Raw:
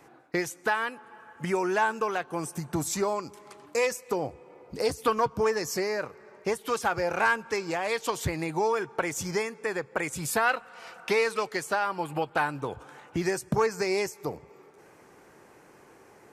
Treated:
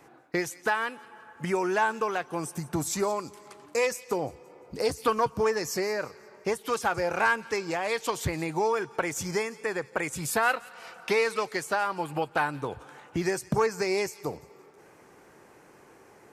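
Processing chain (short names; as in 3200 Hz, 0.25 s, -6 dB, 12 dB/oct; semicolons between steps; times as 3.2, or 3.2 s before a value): thin delay 0.174 s, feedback 37%, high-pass 2700 Hz, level -16 dB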